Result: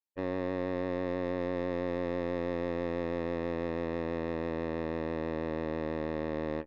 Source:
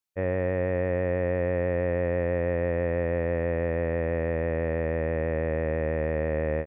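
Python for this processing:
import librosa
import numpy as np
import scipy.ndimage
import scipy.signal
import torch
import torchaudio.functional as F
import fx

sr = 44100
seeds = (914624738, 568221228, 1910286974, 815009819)

y = fx.small_body(x, sr, hz=(290.0, 880.0), ring_ms=20, db=12)
y = fx.cheby_harmonics(y, sr, harmonics=(2, 3, 6), levels_db=(-16, -12, -31), full_scale_db=-10.0)
y = 10.0 ** (-20.0 / 20.0) * np.tanh(y / 10.0 ** (-20.0 / 20.0))
y = F.gain(torch.from_numpy(y), -2.0).numpy()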